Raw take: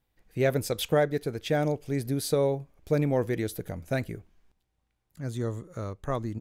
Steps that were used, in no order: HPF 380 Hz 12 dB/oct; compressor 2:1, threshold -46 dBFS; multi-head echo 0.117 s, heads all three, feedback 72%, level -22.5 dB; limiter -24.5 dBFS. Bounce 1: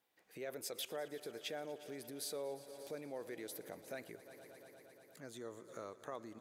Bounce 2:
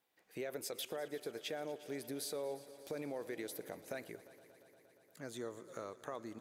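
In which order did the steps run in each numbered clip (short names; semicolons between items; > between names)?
limiter > multi-head echo > compressor > HPF; HPF > limiter > compressor > multi-head echo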